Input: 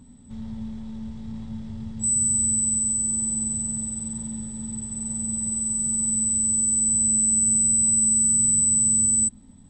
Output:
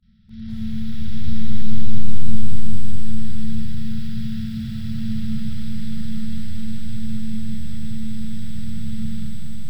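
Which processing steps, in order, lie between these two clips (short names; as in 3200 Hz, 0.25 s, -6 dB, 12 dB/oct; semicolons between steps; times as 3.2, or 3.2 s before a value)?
high shelf 2500 Hz +5.5 dB; de-hum 150.8 Hz, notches 6; AGC gain up to 13 dB; gate with hold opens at -39 dBFS; steep low-pass 5400 Hz 72 dB/oct; 0.87–1.42 flutter echo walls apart 8.2 m, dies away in 0.43 s; on a send at -5 dB: reverb RT60 5.4 s, pre-delay 10 ms; on the sum: FFT band-reject 230–1300 Hz; lo-fi delay 0.201 s, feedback 80%, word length 8-bit, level -4 dB; gain -5 dB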